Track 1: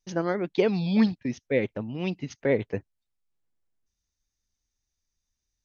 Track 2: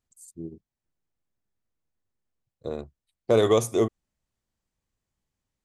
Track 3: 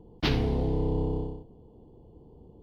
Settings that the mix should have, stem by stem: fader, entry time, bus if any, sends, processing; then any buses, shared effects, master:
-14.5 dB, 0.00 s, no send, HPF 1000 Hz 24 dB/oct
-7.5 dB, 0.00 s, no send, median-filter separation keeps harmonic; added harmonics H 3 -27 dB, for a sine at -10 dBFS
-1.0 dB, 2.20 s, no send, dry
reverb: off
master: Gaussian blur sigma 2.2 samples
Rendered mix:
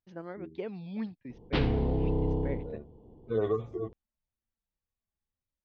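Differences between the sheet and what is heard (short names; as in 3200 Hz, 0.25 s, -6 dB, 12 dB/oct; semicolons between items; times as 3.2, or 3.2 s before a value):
stem 1: missing HPF 1000 Hz 24 dB/oct; stem 2: missing added harmonics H 3 -27 dB, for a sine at -10 dBFS; stem 3: entry 2.20 s -> 1.30 s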